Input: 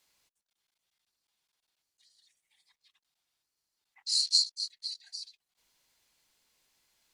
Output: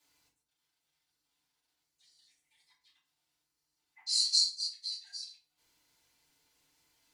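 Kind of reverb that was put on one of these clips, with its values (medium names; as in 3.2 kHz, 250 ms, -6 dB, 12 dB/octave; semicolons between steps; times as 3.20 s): FDN reverb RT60 0.43 s, low-frequency decay 1.55×, high-frequency decay 0.7×, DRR -7.5 dB; trim -7 dB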